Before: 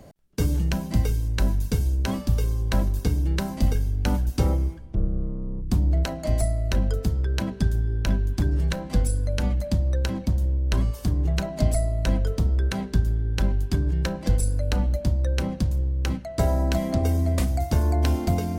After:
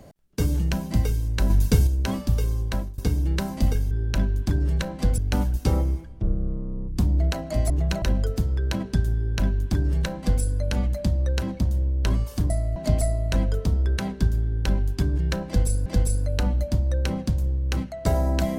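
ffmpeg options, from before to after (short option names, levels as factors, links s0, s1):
-filter_complex "[0:a]asplit=11[s0][s1][s2][s3][s4][s5][s6][s7][s8][s9][s10];[s0]atrim=end=1.502[s11];[s1]atrim=start=1.498:end=1.872,asetpts=PTS-STARTPTS,volume=1.88[s12];[s2]atrim=start=1.868:end=2.98,asetpts=PTS-STARTPTS,afade=t=out:st=0.722:d=0.39:silence=0.0841395[s13];[s3]atrim=start=2.98:end=3.912,asetpts=PTS-STARTPTS,afade=t=in:d=0.004:c=hsin:silence=0.0841395[s14];[s4]atrim=start=7.818:end=9.092[s15];[s5]atrim=start=3.908:end=6.432[s16];[s6]atrim=start=11.168:end=11.492[s17];[s7]atrim=start=6.688:end=11.172[s18];[s8]atrim=start=6.428:end=6.692[s19];[s9]atrim=start=11.488:end=14.592[s20];[s10]atrim=start=14.188[s21];[s11][s12]acrossfade=d=0.004:c1=hsin:c2=hsin[s22];[s13][s14]concat=n=2:v=0:a=1[s23];[s22][s23]acrossfade=d=0.004:c1=hsin:c2=hsin[s24];[s24][s15]acrossfade=d=0.004:c1=hsin:c2=hsin[s25];[s25][s16]acrossfade=d=0.004:c1=hsin:c2=hsin[s26];[s26][s17]acrossfade=d=0.004:c1=hsin:c2=hsin[s27];[s27][s18]acrossfade=d=0.004:c1=hsin:c2=hsin[s28];[s28][s19]acrossfade=d=0.004:c1=hsin:c2=hsin[s29];[s29][s20]acrossfade=d=0.004:c1=hsin:c2=hsin[s30];[s30][s21]acrossfade=d=0.004:c1=hsin:c2=hsin"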